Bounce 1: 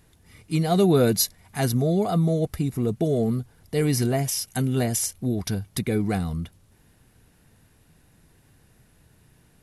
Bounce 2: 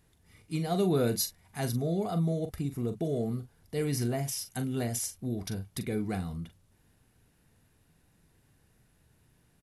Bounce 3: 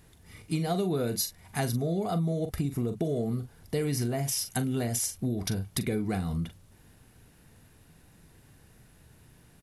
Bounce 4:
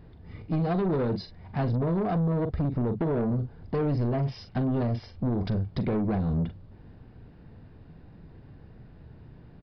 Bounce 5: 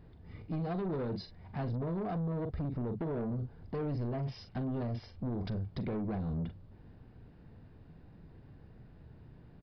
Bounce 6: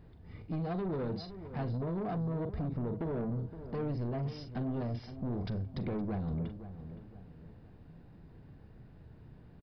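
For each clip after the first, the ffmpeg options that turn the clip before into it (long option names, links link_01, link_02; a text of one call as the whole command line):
ffmpeg -i in.wav -filter_complex "[0:a]asplit=2[link_01][link_02];[link_02]adelay=42,volume=-10dB[link_03];[link_01][link_03]amix=inputs=2:normalize=0,volume=-8.5dB" out.wav
ffmpeg -i in.wav -af "acompressor=threshold=-35dB:ratio=6,volume=9dB" out.wav
ffmpeg -i in.wav -af "tiltshelf=frequency=1500:gain=9,aresample=11025,asoftclip=type=tanh:threshold=-22.5dB,aresample=44100" out.wav
ffmpeg -i in.wav -af "alimiter=level_in=2dB:limit=-24dB:level=0:latency=1:release=18,volume=-2dB,volume=-5.5dB" out.wav
ffmpeg -i in.wav -filter_complex "[0:a]asplit=2[link_01][link_02];[link_02]adelay=516,lowpass=frequency=1700:poles=1,volume=-12dB,asplit=2[link_03][link_04];[link_04]adelay=516,lowpass=frequency=1700:poles=1,volume=0.41,asplit=2[link_05][link_06];[link_06]adelay=516,lowpass=frequency=1700:poles=1,volume=0.41,asplit=2[link_07][link_08];[link_08]adelay=516,lowpass=frequency=1700:poles=1,volume=0.41[link_09];[link_01][link_03][link_05][link_07][link_09]amix=inputs=5:normalize=0" out.wav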